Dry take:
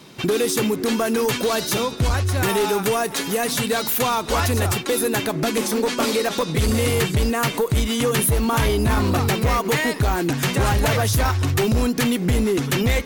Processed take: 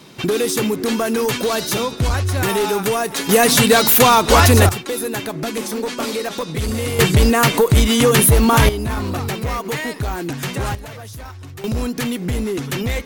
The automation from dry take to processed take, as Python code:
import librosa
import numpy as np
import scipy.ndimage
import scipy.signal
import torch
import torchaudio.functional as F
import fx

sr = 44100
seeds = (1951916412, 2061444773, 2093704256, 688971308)

y = fx.gain(x, sr, db=fx.steps((0.0, 1.5), (3.29, 9.5), (4.69, -2.5), (6.99, 7.0), (8.69, -3.5), (10.75, -15.0), (11.64, -2.5)))